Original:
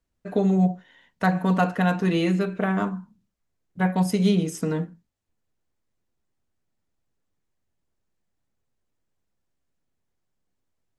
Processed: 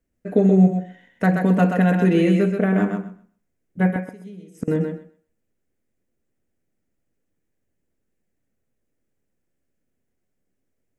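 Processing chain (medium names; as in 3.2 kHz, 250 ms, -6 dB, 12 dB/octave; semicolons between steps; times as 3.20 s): graphic EQ 250/500/1000/2000/4000 Hz +5/+5/-9/+4/-9 dB; 3.95–4.68 s: inverted gate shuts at -17 dBFS, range -25 dB; thinning echo 128 ms, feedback 18%, high-pass 280 Hz, level -4.5 dB; trim +1.5 dB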